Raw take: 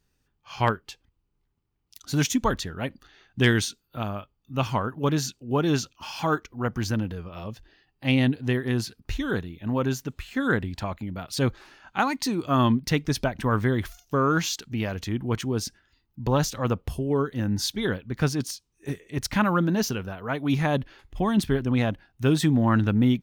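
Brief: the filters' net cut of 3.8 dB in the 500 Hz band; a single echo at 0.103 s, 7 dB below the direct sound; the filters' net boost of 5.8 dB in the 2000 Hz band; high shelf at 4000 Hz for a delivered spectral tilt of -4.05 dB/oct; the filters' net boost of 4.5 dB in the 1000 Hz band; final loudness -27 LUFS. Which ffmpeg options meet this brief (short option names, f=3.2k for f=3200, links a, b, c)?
-af "equalizer=f=500:t=o:g=-6.5,equalizer=f=1k:t=o:g=5,equalizer=f=2k:t=o:g=4.5,highshelf=f=4k:g=8,aecho=1:1:103:0.447,volume=-3dB"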